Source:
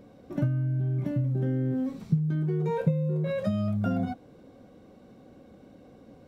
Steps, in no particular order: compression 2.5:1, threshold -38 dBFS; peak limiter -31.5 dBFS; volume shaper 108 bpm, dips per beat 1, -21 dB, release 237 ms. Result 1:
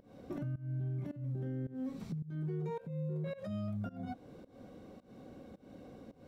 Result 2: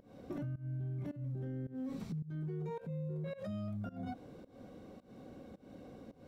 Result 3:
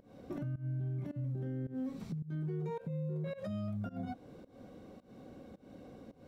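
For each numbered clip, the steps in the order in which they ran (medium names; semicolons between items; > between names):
compression > peak limiter > volume shaper; peak limiter > volume shaper > compression; volume shaper > compression > peak limiter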